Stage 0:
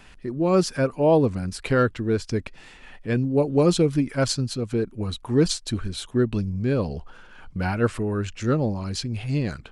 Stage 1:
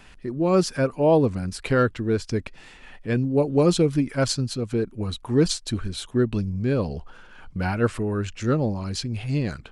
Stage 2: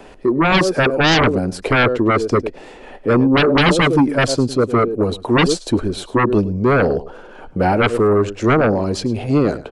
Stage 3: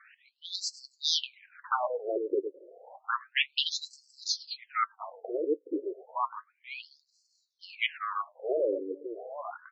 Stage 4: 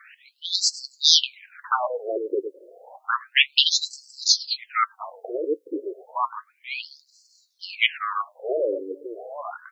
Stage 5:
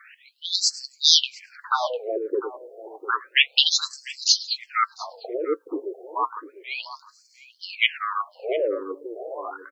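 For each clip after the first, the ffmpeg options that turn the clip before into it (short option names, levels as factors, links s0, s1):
-af anull
-filter_complex "[0:a]asplit=2[s0][s1];[s1]adelay=105,volume=0.141,highshelf=f=4000:g=-2.36[s2];[s0][s2]amix=inputs=2:normalize=0,acrossover=split=350|640|1600[s3][s4][s5][s6];[s4]aeval=exprs='0.188*sin(PI/2*7.08*val(0)/0.188)':c=same[s7];[s3][s7][s5][s6]amix=inputs=4:normalize=0,volume=1.41"
-af "lowshelf=f=380:g=-11.5,flanger=delay=5.1:depth=2.8:regen=62:speed=0.41:shape=triangular,afftfilt=real='re*between(b*sr/1024,390*pow(5900/390,0.5+0.5*sin(2*PI*0.31*pts/sr))/1.41,390*pow(5900/390,0.5+0.5*sin(2*PI*0.31*pts/sr))*1.41)':imag='im*between(b*sr/1024,390*pow(5900/390,0.5+0.5*sin(2*PI*0.31*pts/sr))/1.41,390*pow(5900/390,0.5+0.5*sin(2*PI*0.31*pts/sr))*1.41)':win_size=1024:overlap=0.75,volume=0.891"
-af "highpass=270,highshelf=f=2400:g=11,volume=1.58"
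-filter_complex "[0:a]asplit=2[s0][s1];[s1]adelay=699.7,volume=0.2,highshelf=f=4000:g=-15.7[s2];[s0][s2]amix=inputs=2:normalize=0"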